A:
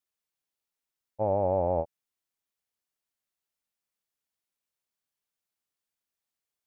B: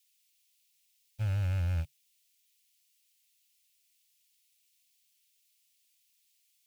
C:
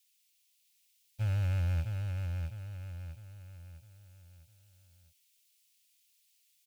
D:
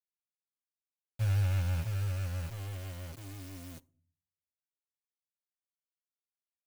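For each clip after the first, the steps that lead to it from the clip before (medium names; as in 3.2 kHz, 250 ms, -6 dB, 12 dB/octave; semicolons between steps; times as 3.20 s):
high-order bell 700 Hz -12.5 dB 2.4 oct; waveshaping leveller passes 1; FFT filter 140 Hz 0 dB, 200 Hz -18 dB, 750 Hz -19 dB, 2.6 kHz +14 dB; trim +5 dB
feedback delay 655 ms, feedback 43%, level -5 dB
bit crusher 8-bit; comb 7.5 ms, depth 58%; on a send at -19 dB: reverberation RT60 0.45 s, pre-delay 4 ms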